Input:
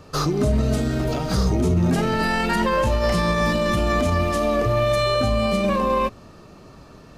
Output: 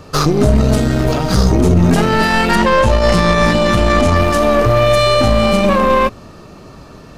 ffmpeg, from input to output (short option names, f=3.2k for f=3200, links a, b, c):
-filter_complex "[0:a]asettb=1/sr,asplit=3[a][b][c];[a]atrim=end=2.554[d];[b]atrim=start=2.55:end=4.16,asetpts=PTS-STARTPTS,afade=t=in:d=0.004:c=qsin,afade=t=out:st=1.606:d=0.004:c=qsin,lowpass=10k[e];[c]atrim=start=4.156[f];[d][e]acrossfade=d=0.004:c1=hsin:c2=qsin[g];[g][f]acrossfade=d=0.004:c1=qsin:c2=hsin,aeval=exprs='0.282*(cos(1*acos(clip(val(0)/0.282,-1,1)))-cos(1*PI/2))+0.0355*(cos(4*acos(clip(val(0)/0.282,-1,1)))-cos(4*PI/2))':c=same,volume=8dB"